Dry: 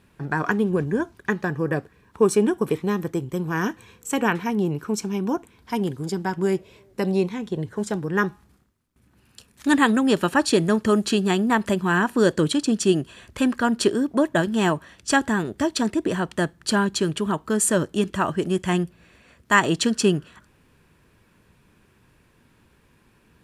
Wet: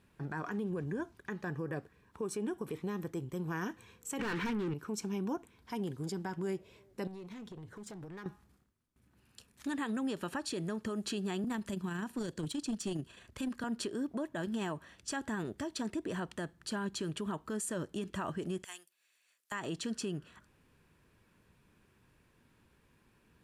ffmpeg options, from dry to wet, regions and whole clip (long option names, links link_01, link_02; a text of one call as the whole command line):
ffmpeg -i in.wav -filter_complex "[0:a]asettb=1/sr,asplit=3[link_01][link_02][link_03];[link_01]atrim=end=4.194[link_04];[link_02]atrim=start=4.19:end=4.74,asetpts=PTS-STARTPTS,afade=type=in:duration=0.004:curve=qsin,afade=type=out:start_time=0.546:duration=0.004:curve=qsin,asplit=2[link_05][link_06];[link_06]highpass=frequency=720:poles=1,volume=31dB,asoftclip=type=tanh:threshold=-7.5dB[link_07];[link_05][link_07]amix=inputs=2:normalize=0,lowpass=frequency=1300:poles=1,volume=-6dB,equalizer=frequency=690:width_type=o:width=1.1:gain=-14[link_08];[link_03]atrim=start=4.736[link_09];[link_04][link_08]acrossfade=duration=0.004:curve1=hsin:curve2=qsin[link_10];[link_10][link_09]acrossfade=duration=0.004:curve1=qsin:curve2=hsin,asettb=1/sr,asplit=3[link_11][link_12][link_13];[link_11]atrim=end=7.074[link_14];[link_12]atrim=start=7.07:end=8.26,asetpts=PTS-STARTPTS,afade=type=in:duration=0.004:curve=qsin,afade=type=out:start_time=1.186:duration=0.004:curve=qsin,acompressor=threshold=-31dB:ratio=16:attack=3.2:release=140:knee=1:detection=peak,volume=33.5dB,asoftclip=hard,volume=-33.5dB[link_15];[link_13]atrim=start=8.256[link_16];[link_14][link_15]acrossfade=duration=0.004:curve1=hsin:curve2=qsin[link_17];[link_17][link_16]acrossfade=duration=0.004:curve1=qsin:curve2=hsin,asettb=1/sr,asplit=3[link_18][link_19][link_20];[link_18]atrim=end=11.444[link_21];[link_19]atrim=start=11.44:end=13.64,asetpts=PTS-STARTPTS,afade=type=in:duration=0.004:curve=qsin,afade=type=out:start_time=2.196:duration=0.004:curve=qsin,tremolo=f=27:d=0.4,acrossover=split=300|3000[link_22][link_23][link_24];[link_23]acompressor=threshold=-45dB:ratio=1.5:attack=3.2:release=140:knee=2.83:detection=peak[link_25];[link_22][link_25][link_24]amix=inputs=3:normalize=0,aeval=exprs='clip(val(0),-1,0.0944)':channel_layout=same[link_26];[link_20]atrim=start=13.636[link_27];[link_21][link_26]acrossfade=duration=0.004:curve1=hsin:curve2=qsin[link_28];[link_28][link_27]acrossfade=duration=0.004:curve1=qsin:curve2=hsin,asettb=1/sr,asplit=3[link_29][link_30][link_31];[link_29]atrim=end=18.644[link_32];[link_30]atrim=start=18.64:end=19.52,asetpts=PTS-STARTPTS,afade=type=in:duration=0.004:curve=qsin,afade=type=out:start_time=0.876:duration=0.004:curve=qsin,highpass=330,aderivative[link_33];[link_31]atrim=start=19.516[link_34];[link_32][link_33]acrossfade=duration=0.004:curve1=hsin:curve2=qsin[link_35];[link_35][link_34]acrossfade=duration=0.004:curve1=qsin:curve2=hsin,acompressor=threshold=-21dB:ratio=6,alimiter=limit=-19.5dB:level=0:latency=1:release=52,volume=-9dB" out.wav